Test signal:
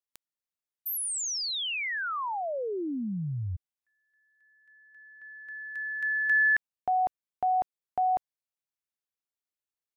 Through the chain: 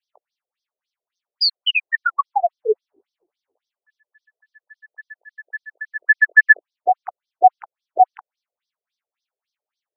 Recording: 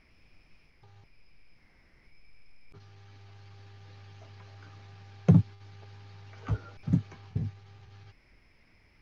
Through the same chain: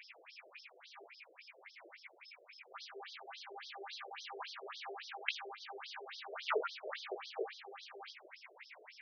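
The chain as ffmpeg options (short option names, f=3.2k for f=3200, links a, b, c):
-af "apsyclip=21.5dB,flanger=delay=17.5:depth=3.3:speed=0.54,afftfilt=real='re*between(b*sr/1024,480*pow(4600/480,0.5+0.5*sin(2*PI*3.6*pts/sr))/1.41,480*pow(4600/480,0.5+0.5*sin(2*PI*3.6*pts/sr))*1.41)':imag='im*between(b*sr/1024,480*pow(4600/480,0.5+0.5*sin(2*PI*3.6*pts/sr))/1.41,480*pow(4600/480,0.5+0.5*sin(2*PI*3.6*pts/sr))*1.41)':win_size=1024:overlap=0.75,volume=-1.5dB"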